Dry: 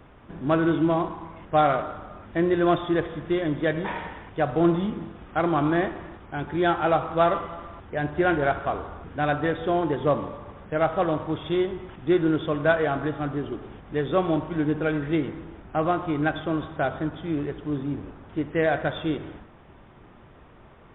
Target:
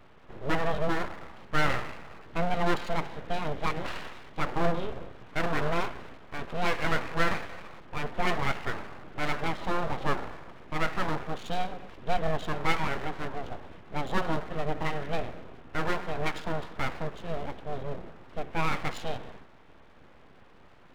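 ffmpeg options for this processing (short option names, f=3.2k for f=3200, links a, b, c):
-af "aeval=exprs='abs(val(0))':c=same,volume=-2.5dB"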